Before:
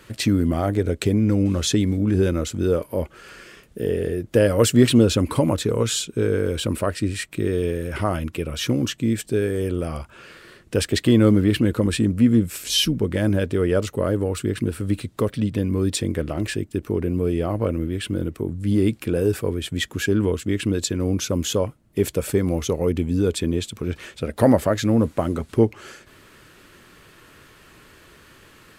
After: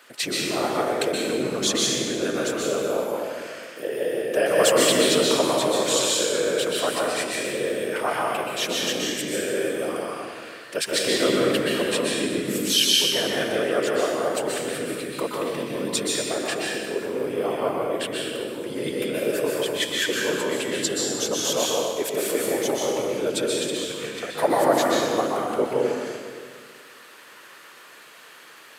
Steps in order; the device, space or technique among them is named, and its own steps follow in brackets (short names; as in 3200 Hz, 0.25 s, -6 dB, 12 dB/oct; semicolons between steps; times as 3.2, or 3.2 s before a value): whispering ghost (whisperiser; HPF 560 Hz 12 dB/oct; reverb RT60 1.8 s, pre-delay 0.117 s, DRR -3.5 dB); 20.82–21.53 notch 2400 Hz, Q 5.1